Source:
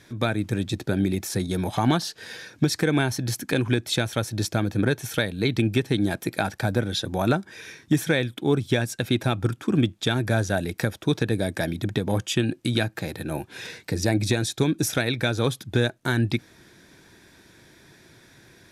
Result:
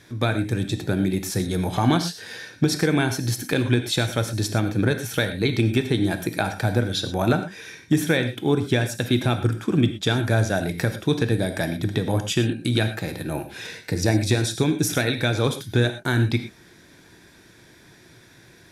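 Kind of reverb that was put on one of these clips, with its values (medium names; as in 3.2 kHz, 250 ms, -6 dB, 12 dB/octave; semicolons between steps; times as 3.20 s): gated-style reverb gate 140 ms flat, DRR 7.5 dB; trim +1 dB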